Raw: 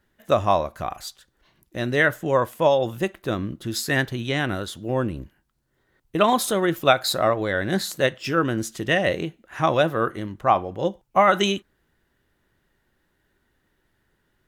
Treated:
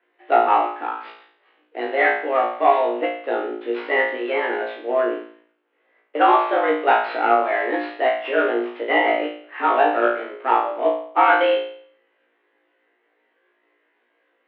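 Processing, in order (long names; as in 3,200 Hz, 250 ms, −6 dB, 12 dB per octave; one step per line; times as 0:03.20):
variable-slope delta modulation 32 kbit/s
flutter between parallel walls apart 3 metres, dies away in 0.56 s
single-sideband voice off tune +130 Hz 180–2,800 Hz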